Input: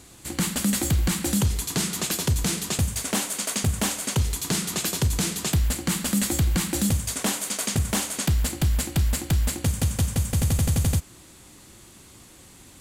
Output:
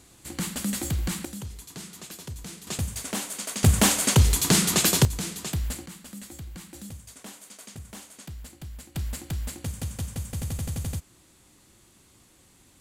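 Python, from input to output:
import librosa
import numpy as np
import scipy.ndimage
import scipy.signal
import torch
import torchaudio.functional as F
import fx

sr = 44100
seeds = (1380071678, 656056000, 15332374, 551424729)

y = fx.gain(x, sr, db=fx.steps((0.0, -5.5), (1.25, -15.0), (2.67, -5.5), (3.63, 5.5), (5.05, -6.5), (5.86, -18.0), (8.95, -9.0)))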